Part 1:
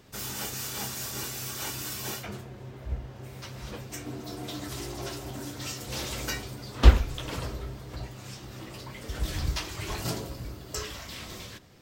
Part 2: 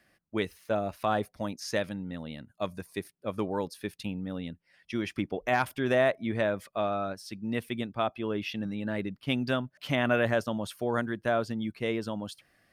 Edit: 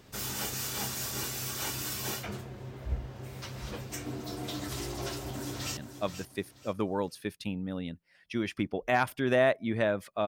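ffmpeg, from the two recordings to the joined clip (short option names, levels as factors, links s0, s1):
-filter_complex "[0:a]apad=whole_dur=10.27,atrim=end=10.27,atrim=end=5.772[s0];[1:a]atrim=start=2.358:end=6.86[s1];[s0][s1]acrossfade=d=0.004:c1=hsin:c2=hsin,asplit=2[s2][s3];[s3]afade=t=in:st=5:d=0.01,afade=t=out:st=5.77:d=0.01,aecho=0:1:480|960|1440:0.316228|0.0948683|0.0284605[s4];[s2][s4]amix=inputs=2:normalize=0"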